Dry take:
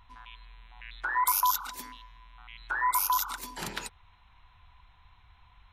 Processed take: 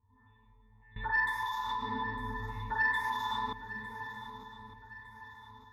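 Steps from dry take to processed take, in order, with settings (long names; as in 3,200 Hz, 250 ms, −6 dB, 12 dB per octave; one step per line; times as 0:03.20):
low-pass that shuts in the quiet parts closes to 1,000 Hz, open at −26.5 dBFS
convolution reverb RT60 2.0 s, pre-delay 6 ms, DRR −8.5 dB
brickwall limiter −17 dBFS, peak gain reduction 9 dB
downward compressor 4 to 1, threshold −33 dBFS, peak gain reduction 9.5 dB
parametric band 11,000 Hz +6.5 dB 2.5 octaves
resonances in every octave A, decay 0.23 s
0:00.96–0:03.53: sine wavefolder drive 17 dB, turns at −20 dBFS
feedback echo with a long and a short gap by turns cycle 1,208 ms, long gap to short 3 to 1, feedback 42%, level −13.5 dB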